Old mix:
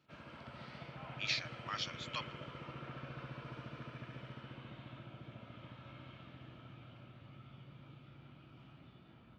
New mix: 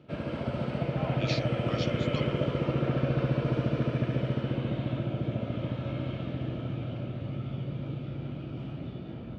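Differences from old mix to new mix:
background +12.0 dB; master: add resonant low shelf 750 Hz +8.5 dB, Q 1.5

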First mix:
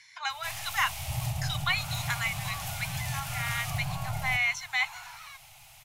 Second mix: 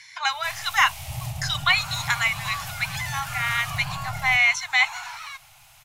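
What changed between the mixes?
speech +8.5 dB; second sound +9.5 dB

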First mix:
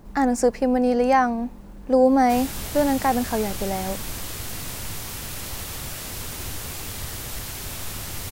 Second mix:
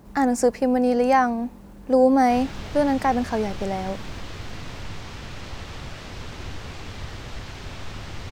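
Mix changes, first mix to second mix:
speech: add HPF 48 Hz; background: add air absorption 170 m

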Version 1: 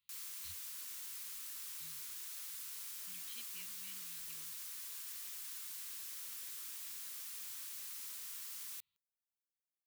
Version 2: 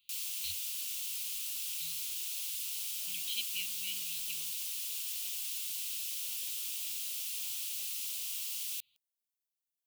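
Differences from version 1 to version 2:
speech +3.5 dB; master: add resonant high shelf 2200 Hz +8 dB, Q 3

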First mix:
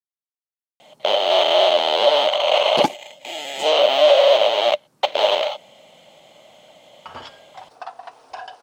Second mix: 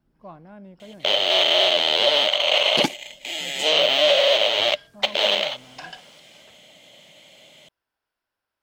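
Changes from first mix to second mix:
speech: unmuted; second sound: entry -2.55 s; master: add EQ curve 280 Hz 0 dB, 830 Hz -9 dB, 1200 Hz -5 dB, 1800 Hz +3 dB

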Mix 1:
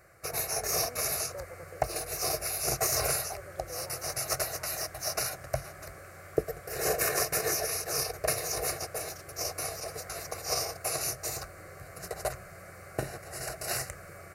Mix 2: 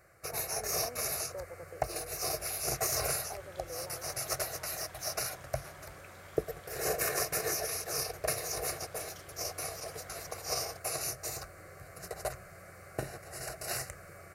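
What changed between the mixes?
first sound -3.5 dB; second sound +11.0 dB

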